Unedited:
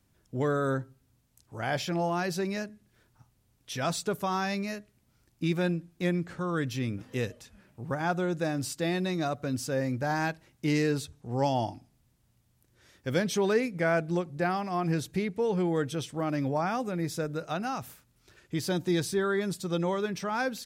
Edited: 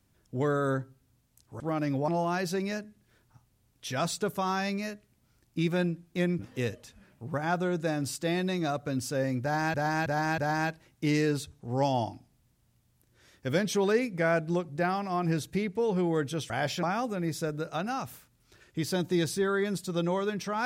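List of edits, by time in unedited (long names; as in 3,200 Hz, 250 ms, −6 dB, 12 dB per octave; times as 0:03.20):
0:01.60–0:01.93: swap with 0:16.11–0:16.59
0:06.24–0:06.96: remove
0:09.99–0:10.31: repeat, 4 plays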